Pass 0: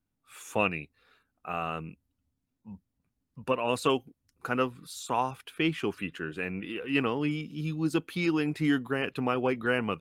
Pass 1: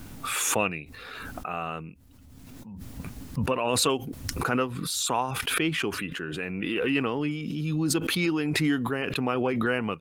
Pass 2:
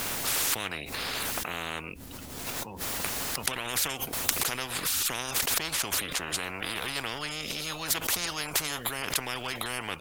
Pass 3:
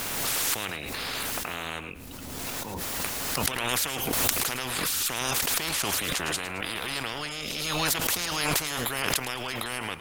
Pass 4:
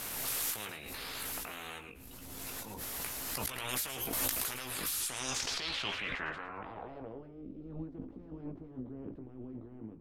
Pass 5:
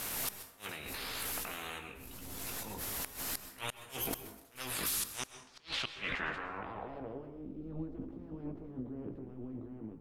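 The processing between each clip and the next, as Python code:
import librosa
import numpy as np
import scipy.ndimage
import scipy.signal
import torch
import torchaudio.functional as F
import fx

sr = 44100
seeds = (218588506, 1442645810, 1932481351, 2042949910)

y1 = fx.pre_swell(x, sr, db_per_s=22.0)
y2 = fx.spectral_comp(y1, sr, ratio=10.0)
y2 = y2 * librosa.db_to_amplitude(7.5)
y3 = fx.echo_feedback(y2, sr, ms=109, feedback_pct=34, wet_db=-14)
y3 = fx.pre_swell(y3, sr, db_per_s=26.0)
y4 = fx.chorus_voices(y3, sr, voices=6, hz=0.49, base_ms=17, depth_ms=2.4, mix_pct=35)
y4 = fx.filter_sweep_lowpass(y4, sr, from_hz=13000.0, to_hz=300.0, start_s=4.9, end_s=7.46, q=2.4)
y4 = fx.end_taper(y4, sr, db_per_s=120.0)
y4 = y4 * librosa.db_to_amplitude(-7.5)
y5 = fx.gate_flip(y4, sr, shuts_db=-24.0, range_db=-30)
y5 = fx.rev_plate(y5, sr, seeds[0], rt60_s=0.77, hf_ratio=0.55, predelay_ms=115, drr_db=10.5)
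y5 = y5 * librosa.db_to_amplitude(1.0)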